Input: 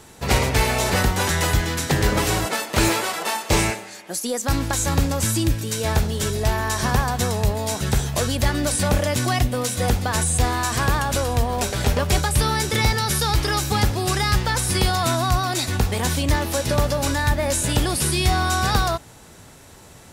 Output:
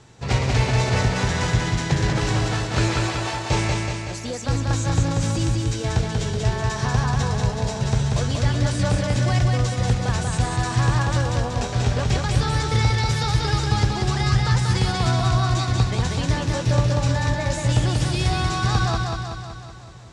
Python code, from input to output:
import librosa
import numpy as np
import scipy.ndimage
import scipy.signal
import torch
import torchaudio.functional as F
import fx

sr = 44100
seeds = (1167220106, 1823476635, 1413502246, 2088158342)

y = scipy.signal.sosfilt(scipy.signal.butter(4, 7100.0, 'lowpass', fs=sr, output='sos'), x)
y = fx.peak_eq(y, sr, hz=120.0, db=12.0, octaves=0.47)
y = fx.echo_feedback(y, sr, ms=188, feedback_pct=59, wet_db=-3.0)
y = y * 10.0 ** (-5.5 / 20.0)